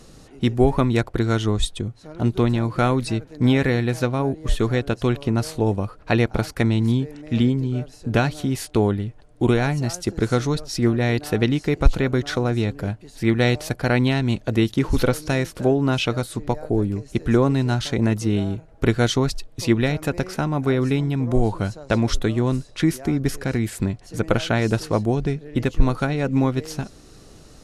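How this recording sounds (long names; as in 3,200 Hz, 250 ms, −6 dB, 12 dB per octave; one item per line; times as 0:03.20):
background noise floor −47 dBFS
spectral slope −6.0 dB per octave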